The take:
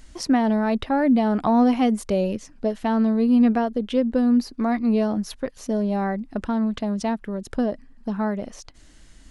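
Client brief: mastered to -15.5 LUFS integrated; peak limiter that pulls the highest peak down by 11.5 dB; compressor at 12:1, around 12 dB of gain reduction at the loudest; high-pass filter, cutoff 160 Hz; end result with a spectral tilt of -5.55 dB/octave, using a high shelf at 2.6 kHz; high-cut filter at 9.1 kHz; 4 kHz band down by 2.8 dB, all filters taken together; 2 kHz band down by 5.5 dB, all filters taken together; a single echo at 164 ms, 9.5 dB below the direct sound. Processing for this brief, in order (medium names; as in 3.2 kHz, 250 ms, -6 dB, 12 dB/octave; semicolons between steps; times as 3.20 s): high-pass 160 Hz; low-pass 9.1 kHz; peaking EQ 2 kHz -8.5 dB; treble shelf 2.6 kHz +7.5 dB; peaking EQ 4 kHz -8.5 dB; compression 12:1, threshold -27 dBFS; peak limiter -25.5 dBFS; delay 164 ms -9.5 dB; trim +17.5 dB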